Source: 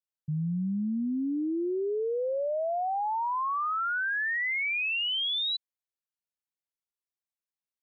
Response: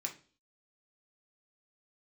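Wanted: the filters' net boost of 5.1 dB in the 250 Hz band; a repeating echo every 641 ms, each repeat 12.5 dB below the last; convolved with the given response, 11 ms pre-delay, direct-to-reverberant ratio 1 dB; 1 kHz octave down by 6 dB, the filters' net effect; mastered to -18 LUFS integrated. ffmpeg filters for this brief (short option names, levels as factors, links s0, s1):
-filter_complex "[0:a]equalizer=f=250:t=o:g=7,equalizer=f=1000:t=o:g=-8.5,aecho=1:1:641|1282|1923:0.237|0.0569|0.0137,asplit=2[s0][s1];[1:a]atrim=start_sample=2205,adelay=11[s2];[s1][s2]afir=irnorm=-1:irlink=0,volume=0.891[s3];[s0][s3]amix=inputs=2:normalize=0,volume=2.51"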